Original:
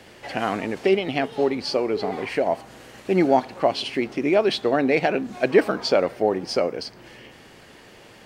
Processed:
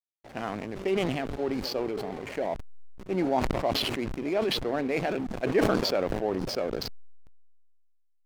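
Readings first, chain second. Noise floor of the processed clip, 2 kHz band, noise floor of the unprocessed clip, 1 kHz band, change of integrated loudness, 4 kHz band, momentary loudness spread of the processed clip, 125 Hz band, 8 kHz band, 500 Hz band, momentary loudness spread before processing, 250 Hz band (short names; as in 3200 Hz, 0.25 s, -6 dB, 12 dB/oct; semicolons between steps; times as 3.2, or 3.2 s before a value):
-66 dBFS, -7.5 dB, -48 dBFS, -7.0 dB, -6.5 dB, -3.0 dB, 10 LU, -1.5 dB, n/a, -7.5 dB, 7 LU, -5.5 dB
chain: pre-echo 0.1 s -19 dB; backlash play -25.5 dBFS; sustainer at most 26 dB/s; gain -9 dB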